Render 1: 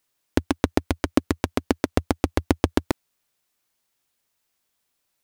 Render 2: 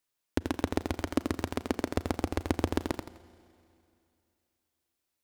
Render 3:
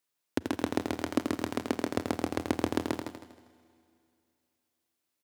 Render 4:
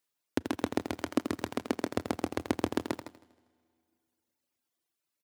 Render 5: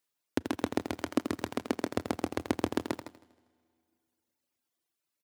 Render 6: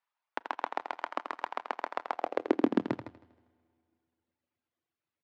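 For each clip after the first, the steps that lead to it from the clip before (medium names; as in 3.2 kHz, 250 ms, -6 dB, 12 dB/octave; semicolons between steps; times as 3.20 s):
Schroeder reverb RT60 2.7 s, combs from 33 ms, DRR 16.5 dB; bit-crushed delay 84 ms, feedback 35%, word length 6-bit, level -5.5 dB; trim -8.5 dB
high-pass 110 Hz 24 dB/octave; on a send: feedback delay 158 ms, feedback 29%, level -8.5 dB
reverb removal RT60 1.4 s
no audible change
low-pass 2.6 kHz 12 dB/octave; high-pass sweep 900 Hz -> 92 Hz, 2.12–3.11 s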